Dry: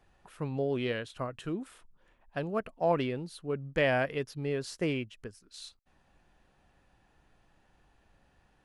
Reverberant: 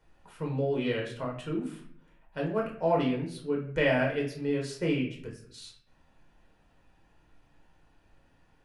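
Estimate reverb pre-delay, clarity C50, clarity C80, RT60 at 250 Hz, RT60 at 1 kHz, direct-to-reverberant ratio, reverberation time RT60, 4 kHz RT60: 6 ms, 6.5 dB, 11.0 dB, 0.85 s, 0.55 s, −1.5 dB, 0.60 s, 0.40 s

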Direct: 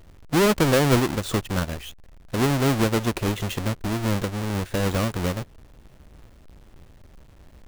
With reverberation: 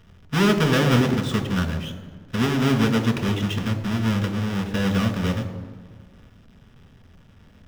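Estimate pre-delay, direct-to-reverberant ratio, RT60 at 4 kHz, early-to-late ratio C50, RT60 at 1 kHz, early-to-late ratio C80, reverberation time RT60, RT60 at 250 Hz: 3 ms, 5.0 dB, 1.1 s, 10.0 dB, 1.5 s, 11.0 dB, 1.6 s, 2.0 s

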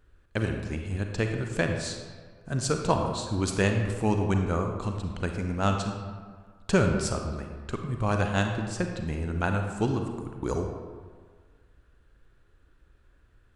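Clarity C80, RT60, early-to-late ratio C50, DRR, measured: 6.0 dB, 1.7 s, 4.5 dB, 3.5 dB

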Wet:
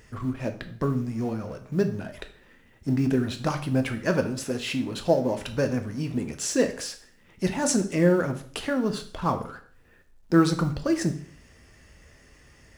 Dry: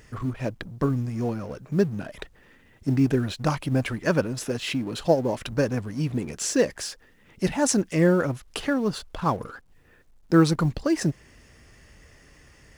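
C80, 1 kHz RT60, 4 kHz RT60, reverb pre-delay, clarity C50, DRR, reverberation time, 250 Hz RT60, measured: 16.0 dB, 0.50 s, 0.50 s, 6 ms, 12.5 dB, 6.5 dB, 0.50 s, 0.55 s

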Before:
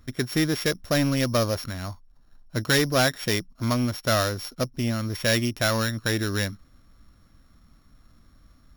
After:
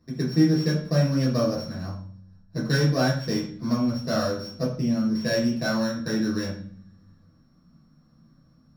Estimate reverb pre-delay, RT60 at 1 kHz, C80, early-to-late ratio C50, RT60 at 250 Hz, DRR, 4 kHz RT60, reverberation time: 3 ms, 0.50 s, 9.0 dB, 4.5 dB, 1.0 s, −7.5 dB, 0.60 s, 0.50 s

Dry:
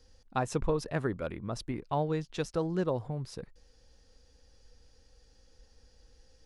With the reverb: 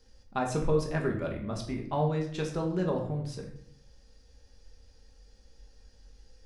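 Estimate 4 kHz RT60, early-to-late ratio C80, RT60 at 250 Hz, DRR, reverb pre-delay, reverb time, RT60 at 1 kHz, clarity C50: 0.50 s, 11.0 dB, 0.95 s, 0.0 dB, 5 ms, 0.65 s, 0.60 s, 7.5 dB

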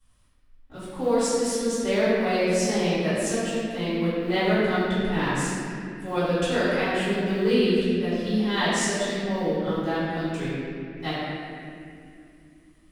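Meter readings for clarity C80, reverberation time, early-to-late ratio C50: −2.5 dB, 2.5 s, −4.5 dB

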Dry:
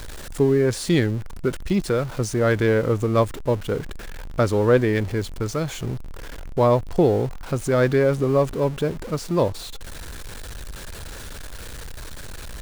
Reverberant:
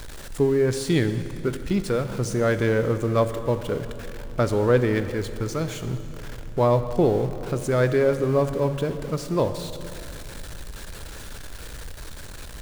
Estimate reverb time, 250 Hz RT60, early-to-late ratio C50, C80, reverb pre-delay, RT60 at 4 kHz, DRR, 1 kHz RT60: 2.9 s, 3.5 s, 10.5 dB, 11.0 dB, 5 ms, 2.5 s, 9.5 dB, 2.6 s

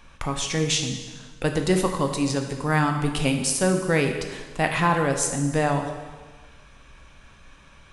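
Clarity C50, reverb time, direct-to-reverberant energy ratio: 6.5 dB, 1.4 s, 3.5 dB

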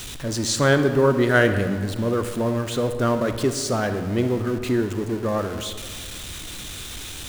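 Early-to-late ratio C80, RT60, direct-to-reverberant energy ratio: 10.0 dB, 1.8 s, 8.0 dB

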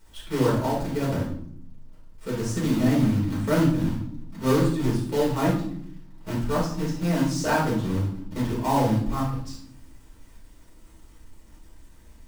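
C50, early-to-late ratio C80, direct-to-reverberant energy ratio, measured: 3.0 dB, 8.5 dB, −7.5 dB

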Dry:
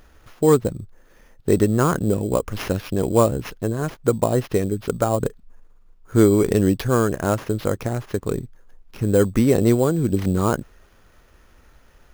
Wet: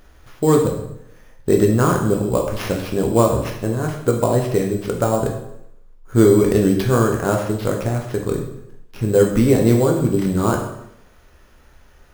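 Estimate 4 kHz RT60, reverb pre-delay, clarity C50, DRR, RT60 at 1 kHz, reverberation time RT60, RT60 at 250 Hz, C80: 0.70 s, 5 ms, 5.5 dB, 1.0 dB, 0.75 s, 0.75 s, 0.80 s, 8.5 dB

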